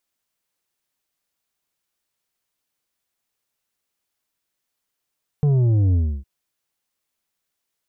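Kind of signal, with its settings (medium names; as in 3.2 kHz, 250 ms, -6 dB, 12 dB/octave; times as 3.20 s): sub drop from 150 Hz, over 0.81 s, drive 7 dB, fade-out 0.30 s, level -15 dB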